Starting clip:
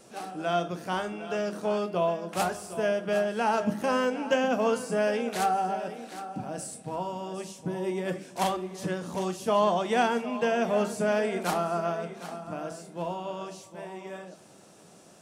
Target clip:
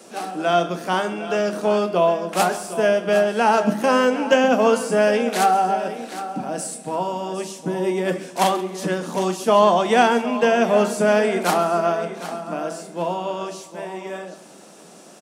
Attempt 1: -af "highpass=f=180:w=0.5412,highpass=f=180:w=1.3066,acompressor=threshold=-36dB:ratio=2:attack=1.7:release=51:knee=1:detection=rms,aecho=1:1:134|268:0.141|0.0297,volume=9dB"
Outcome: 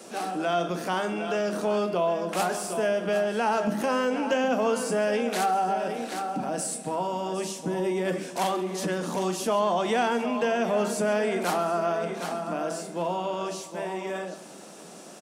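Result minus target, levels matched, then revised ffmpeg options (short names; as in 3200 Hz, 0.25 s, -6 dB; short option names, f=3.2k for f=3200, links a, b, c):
compressor: peak gain reduction +11 dB
-af "highpass=f=180:w=0.5412,highpass=f=180:w=1.3066,aecho=1:1:134|268:0.141|0.0297,volume=9dB"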